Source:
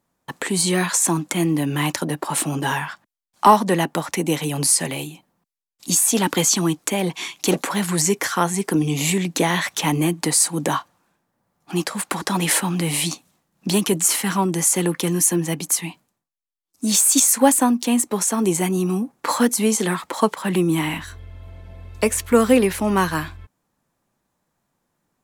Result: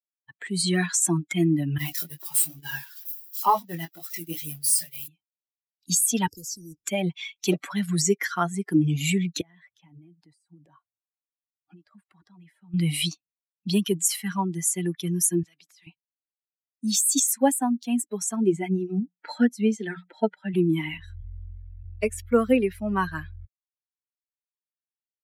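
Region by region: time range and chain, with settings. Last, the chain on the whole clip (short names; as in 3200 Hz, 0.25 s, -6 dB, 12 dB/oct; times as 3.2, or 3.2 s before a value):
1.78–5.08 switching spikes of -11 dBFS + expander -17 dBFS + chorus 2.2 Hz, delay 20 ms, depth 4.7 ms
6.27–6.87 Chebyshev band-stop 490–5000 Hz, order 5 + high shelf 6200 Hz -8 dB + spectral compressor 2:1
9.41–12.74 compressor 16:1, threshold -31 dBFS + high shelf 2200 Hz -9 dB
15.43–15.87 compressor 4:1, threshold -27 dBFS + BPF 180–6400 Hz + spectral compressor 2:1
18.36–20.54 Butterworth band-stop 1100 Hz, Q 3.3 + high shelf 6300 Hz -11.5 dB + notches 60/120/180 Hz
21.22–21.84 zero-crossing step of -54 dBFS + inverse Chebyshev band-stop 180–590 Hz, stop band 50 dB
whole clip: per-bin expansion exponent 2; AGC gain up to 10.5 dB; gain -7 dB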